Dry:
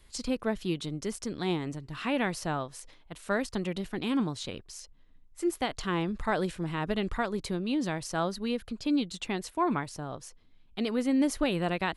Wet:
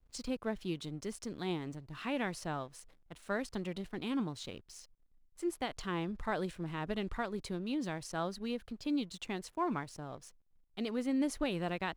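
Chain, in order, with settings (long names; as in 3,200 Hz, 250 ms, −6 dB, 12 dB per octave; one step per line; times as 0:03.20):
slack as between gear wheels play −49.5 dBFS
level −6.5 dB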